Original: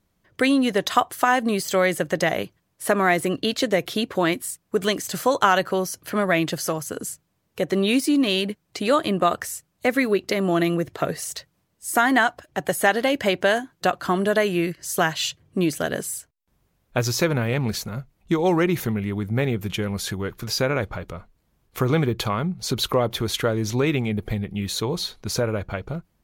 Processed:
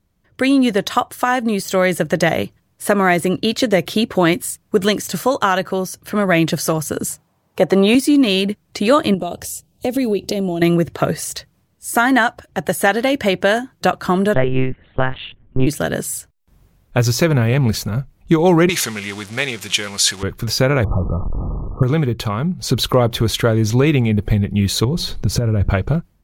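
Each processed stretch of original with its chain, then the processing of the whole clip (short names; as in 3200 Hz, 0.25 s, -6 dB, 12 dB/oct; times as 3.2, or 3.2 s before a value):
7.1–7.95 HPF 90 Hz + bell 840 Hz +10.5 dB 1.3 oct
9.14–10.62 band shelf 1500 Hz -14.5 dB 1.3 oct + compressor 2.5:1, threshold -30 dBFS
14.34–15.67 air absorption 360 m + monotone LPC vocoder at 8 kHz 130 Hz
18.69–20.23 zero-crossing step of -36.5 dBFS + weighting filter ITU-R 468
20.84–21.83 delta modulation 16 kbps, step -32 dBFS + brick-wall FIR low-pass 1300 Hz + low shelf 330 Hz +5.5 dB
24.84–25.7 low shelf 320 Hz +12 dB + compressor 12:1, threshold -25 dBFS
whole clip: low shelf 180 Hz +8 dB; AGC; gain -1 dB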